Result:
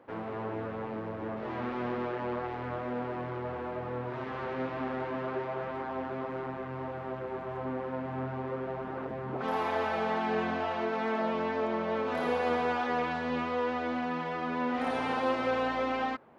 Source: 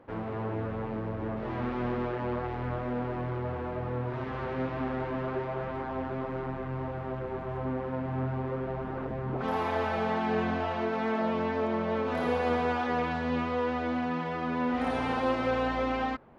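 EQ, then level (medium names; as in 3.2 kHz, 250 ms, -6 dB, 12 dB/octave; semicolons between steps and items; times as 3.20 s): high-pass 260 Hz 6 dB/octave; 0.0 dB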